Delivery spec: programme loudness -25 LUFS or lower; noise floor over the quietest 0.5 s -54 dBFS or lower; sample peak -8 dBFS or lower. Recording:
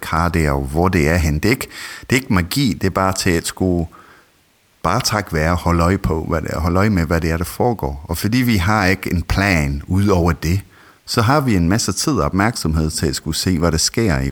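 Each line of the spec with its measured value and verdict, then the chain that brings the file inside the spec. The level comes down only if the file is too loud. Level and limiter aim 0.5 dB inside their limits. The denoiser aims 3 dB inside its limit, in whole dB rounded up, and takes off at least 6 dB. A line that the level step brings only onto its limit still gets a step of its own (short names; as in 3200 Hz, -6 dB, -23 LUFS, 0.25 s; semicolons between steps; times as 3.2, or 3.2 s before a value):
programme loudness -17.5 LUFS: fail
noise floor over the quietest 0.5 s -56 dBFS: OK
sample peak -1.5 dBFS: fail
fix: gain -8 dB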